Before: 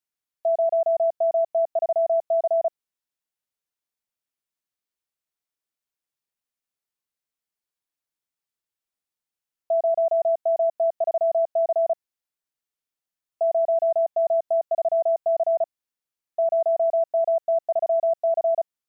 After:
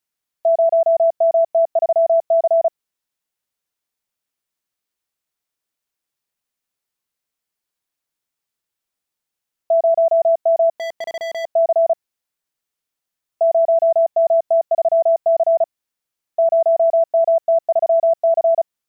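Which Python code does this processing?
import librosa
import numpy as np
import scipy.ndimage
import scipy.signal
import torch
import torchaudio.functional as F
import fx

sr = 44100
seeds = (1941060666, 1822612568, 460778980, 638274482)

y = fx.clip_hard(x, sr, threshold_db=-30.5, at=(10.78, 11.44), fade=0.02)
y = y * librosa.db_to_amplitude(6.5)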